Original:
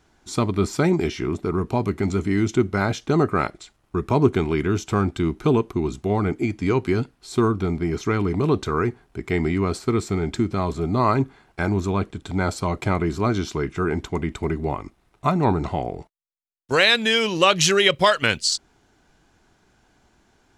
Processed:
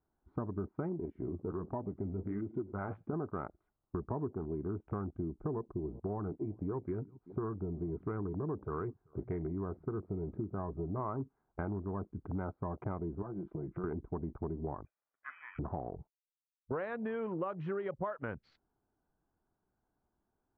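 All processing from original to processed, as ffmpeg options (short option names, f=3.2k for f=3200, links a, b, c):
-filter_complex "[0:a]asettb=1/sr,asplit=3[a][b][c];[a]atrim=end=1.054[d];[b]atrim=start=1.05:end=3.13,asetpts=PTS-STARTPTS,afade=t=in:d=0.004:c=qsin,afade=t=out:st=2.076:d=0.004:c=qsin,highshelf=f=2.2k:g=9.5,flanger=delay=3.1:depth=8.7:regen=51:speed=1.4:shape=sinusoidal,aecho=1:1:101:0.0944,atrim=end_sample=91728[e];[c]atrim=start=3.126[f];[d][e]acrossfade=d=0.004:c1=hsin:c2=qsin[g];[g][f]acrossfade=d=0.004:c1=qsin:c2=hsin,asettb=1/sr,asplit=3[h][i][j];[h]atrim=end=5.304[k];[i]atrim=start=5.3:end=11.12,asetpts=PTS-STARTPTS,afade=t=in:d=0.004:c=qsin,afade=t=out:st=5.816:d=0.004:c=qsin,bandreject=f=240:w=7.2,aecho=1:1:386:0.0708,atrim=end_sample=256662[l];[j]atrim=start=11.116[m];[k][l]acrossfade=d=0.004:c1=hsin:c2=qsin[n];[n][m]acrossfade=d=0.004:c1=qsin:c2=hsin,asettb=1/sr,asplit=3[o][p][q];[o]atrim=end=13.224[r];[p]atrim=start=13.22:end=13.84,asetpts=PTS-STARTPTS,afade=t=in:d=0.004:c=qsin,afade=t=out:st=0.616:d=0.004:c=qsin,aecho=1:1:5.9:0.84,atrim=end_sample=27342,acompressor=threshold=-30dB:ratio=4:attack=3.2:release=140:knee=1:detection=peak[s];[q]atrim=start=13.836[t];[r][s]acrossfade=d=0.004:c1=hsin:c2=qsin[u];[u][t]acrossfade=d=0.004:c1=qsin:c2=hsin,asettb=1/sr,asplit=3[v][w][x];[v]atrim=end=14.854[y];[w]atrim=start=14.85:end=15.59,asetpts=PTS-STARTPTS,afade=t=in:d=0.004:c=qsin,afade=t=out:st=0.736:d=0.004:c=qsin,highpass=200,acompressor=threshold=-43dB:ratio=1.5:attack=3.2:release=140:knee=1:detection=peak,lowpass=f=2.3k:t=q:w=0.5098,lowpass=f=2.3k:t=q:w=0.6013,lowpass=f=2.3k:t=q:w=0.9,lowpass=f=2.3k:t=q:w=2.563,afreqshift=-2700[z];[x]atrim=start=15.586[aa];[y][z]acrossfade=d=0.004:c1=hsin:c2=qsin[ab];[ab][aa]acrossfade=d=0.004:c1=qsin:c2=hsin,afwtdn=0.0316,lowpass=f=1.3k:w=0.5412,lowpass=f=1.3k:w=1.3066,acompressor=threshold=-30dB:ratio=6,volume=-5dB"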